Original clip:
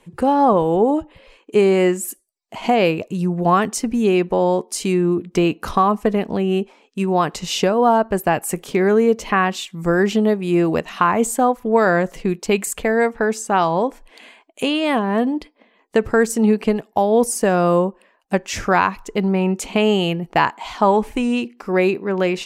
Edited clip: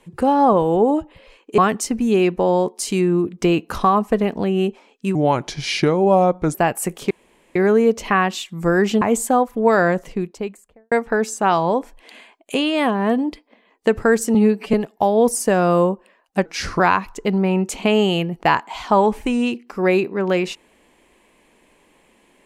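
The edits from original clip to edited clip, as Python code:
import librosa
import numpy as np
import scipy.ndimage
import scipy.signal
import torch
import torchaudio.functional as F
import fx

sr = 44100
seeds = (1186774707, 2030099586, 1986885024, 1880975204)

y = fx.studio_fade_out(x, sr, start_s=11.87, length_s=1.13)
y = fx.edit(y, sr, fx.cut(start_s=1.58, length_s=1.93),
    fx.speed_span(start_s=7.08, length_s=1.13, speed=0.81),
    fx.insert_room_tone(at_s=8.77, length_s=0.45),
    fx.cut(start_s=10.23, length_s=0.87),
    fx.stretch_span(start_s=16.43, length_s=0.26, factor=1.5),
    fx.speed_span(start_s=18.41, length_s=0.29, speed=0.85), tone=tone)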